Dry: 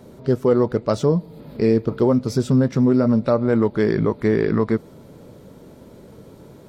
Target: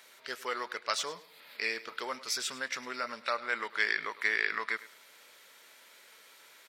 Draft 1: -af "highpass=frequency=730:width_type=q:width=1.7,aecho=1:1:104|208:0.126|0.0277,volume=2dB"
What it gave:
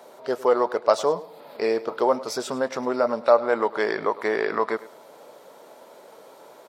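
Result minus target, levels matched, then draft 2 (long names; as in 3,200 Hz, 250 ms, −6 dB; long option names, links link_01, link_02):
2,000 Hz band −10.5 dB
-af "highpass=frequency=2000:width_type=q:width=1.7,aecho=1:1:104|208:0.126|0.0277,volume=2dB"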